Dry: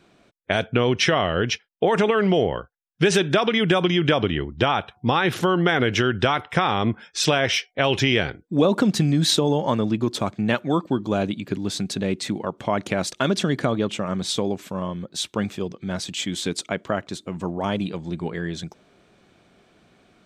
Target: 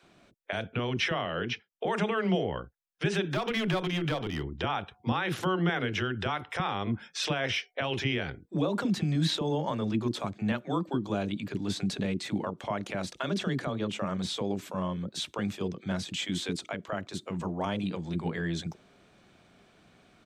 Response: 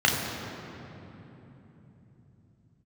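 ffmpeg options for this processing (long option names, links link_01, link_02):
-filter_complex "[0:a]acrossover=split=3500[link_01][link_02];[link_02]acompressor=threshold=-35dB:ratio=4:attack=1:release=60[link_03];[link_01][link_03]amix=inputs=2:normalize=0,alimiter=limit=-15.5dB:level=0:latency=1:release=332,asettb=1/sr,asplit=3[link_04][link_05][link_06];[link_04]atrim=end=1.224[link_07];[link_05]atrim=start=1.22:end=1.69,asetpts=PTS-STARTPTS,afade=type=in:duration=0.004:curve=qsin,afade=type=out:start_time=0.466:duration=0.004:curve=qsin,highpass=130,lowpass=5200[link_08];[link_06]atrim=start=1.686[link_09];[link_07][link_08]acrossfade=duration=0.004:curve1=hsin:curve2=qsin[link_10];[link_10][link_09]acrossfade=duration=0.004:curve1=qsin:curve2=hsin,asettb=1/sr,asplit=3[link_11][link_12][link_13];[link_11]atrim=end=3.324[link_14];[link_12]atrim=start=3.32:end=4.43,asetpts=PTS-STARTPTS,afade=type=in:duration=0.004:curve=qsin,afade=type=out:start_time=1.106:duration=0.004:curve=qsin,aeval=exprs='clip(val(0),-1,0.0708)':channel_layout=same[link_15];[link_13]atrim=start=4.426[link_16];[link_14][link_15]acrossfade=duration=0.004:curve1=hsin:curve2=qsin[link_17];[link_17][link_16]acrossfade=duration=0.004:curve1=qsin:curve2=hsin,acrossover=split=400[link_18][link_19];[link_18]adelay=30[link_20];[link_20][link_19]amix=inputs=2:normalize=0,volume=-2dB"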